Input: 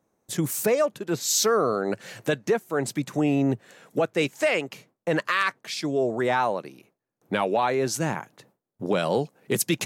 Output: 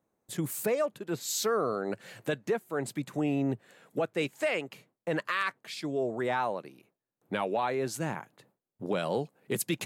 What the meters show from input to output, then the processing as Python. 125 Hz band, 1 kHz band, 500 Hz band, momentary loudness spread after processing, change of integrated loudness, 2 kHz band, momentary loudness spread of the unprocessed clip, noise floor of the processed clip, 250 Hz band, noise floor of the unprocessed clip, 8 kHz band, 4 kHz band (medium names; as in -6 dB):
-6.5 dB, -6.5 dB, -6.5 dB, 9 LU, -7.0 dB, -6.5 dB, 8 LU, under -85 dBFS, -6.5 dB, -85 dBFS, -9.0 dB, -8.0 dB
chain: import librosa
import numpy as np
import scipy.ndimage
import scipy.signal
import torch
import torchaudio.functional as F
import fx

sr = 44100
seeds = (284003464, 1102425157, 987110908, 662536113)

y = fx.peak_eq(x, sr, hz=5800.0, db=-6.5, octaves=0.44)
y = y * librosa.db_to_amplitude(-6.5)